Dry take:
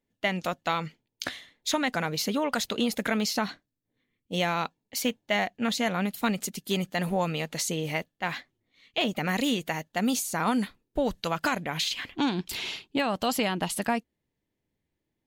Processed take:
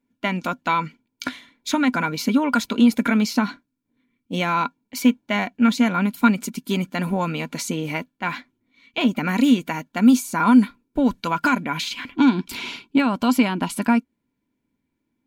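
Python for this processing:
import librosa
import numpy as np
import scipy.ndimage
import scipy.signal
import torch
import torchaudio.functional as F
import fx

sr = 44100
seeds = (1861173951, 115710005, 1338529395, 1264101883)

y = fx.small_body(x, sr, hz=(250.0, 1000.0, 1400.0, 2300.0), ring_ms=45, db=15)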